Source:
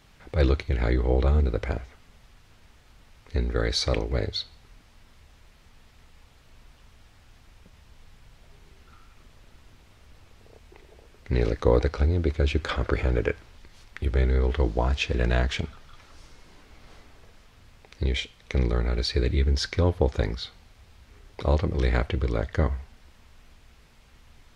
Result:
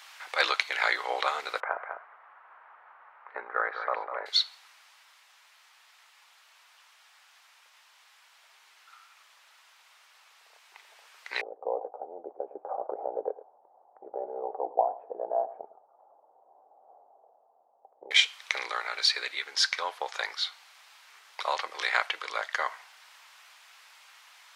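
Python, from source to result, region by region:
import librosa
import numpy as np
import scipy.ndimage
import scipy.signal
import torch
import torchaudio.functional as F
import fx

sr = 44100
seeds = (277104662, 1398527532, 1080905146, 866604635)

y = fx.chain(x, sr, fx.lowpass(hz=1400.0, slope=24),
    fx.echo_single(ms=200, db=-8.0), at=(1.6, 4.26))
y = fx.chain(y, sr, fx.cheby1_lowpass(hz=780.0, order=5),
    fx.echo_single(ms=108, db=-16.5), at=(11.41, 18.11))
y = scipy.signal.sosfilt(scipy.signal.butter(4, 860.0, 'highpass', fs=sr, output='sos'), y)
y = fx.rider(y, sr, range_db=10, speed_s=2.0)
y = y * librosa.db_to_amplitude(7.0)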